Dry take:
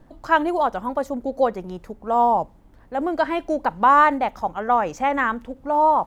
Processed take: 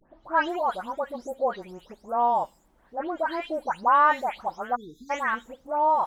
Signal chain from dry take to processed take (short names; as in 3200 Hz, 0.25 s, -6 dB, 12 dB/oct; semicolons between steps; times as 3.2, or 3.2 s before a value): spectral delay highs late, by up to 0.249 s; low shelf 280 Hz -11.5 dB; spectral delete 4.75–5.1, 460–3400 Hz; gain -3.5 dB